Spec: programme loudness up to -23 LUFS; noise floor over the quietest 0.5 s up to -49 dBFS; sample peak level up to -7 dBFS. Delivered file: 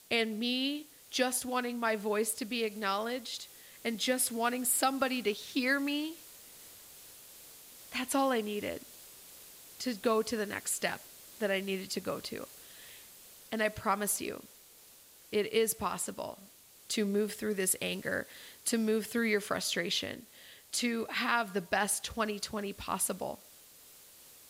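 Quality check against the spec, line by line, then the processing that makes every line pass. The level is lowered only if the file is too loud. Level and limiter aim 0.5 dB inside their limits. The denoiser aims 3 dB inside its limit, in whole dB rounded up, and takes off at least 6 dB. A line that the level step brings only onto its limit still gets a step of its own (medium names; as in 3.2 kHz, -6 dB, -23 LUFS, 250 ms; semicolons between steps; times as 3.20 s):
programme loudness -33.0 LUFS: pass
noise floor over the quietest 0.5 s -57 dBFS: pass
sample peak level -15.0 dBFS: pass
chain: none needed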